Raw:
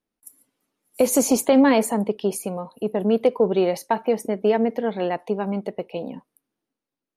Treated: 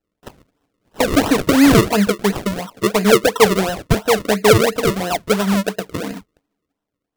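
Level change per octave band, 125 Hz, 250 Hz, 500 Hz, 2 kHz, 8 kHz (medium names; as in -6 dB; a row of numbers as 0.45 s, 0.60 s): +13.5 dB, +5.5 dB, +4.5 dB, +12.5 dB, +4.0 dB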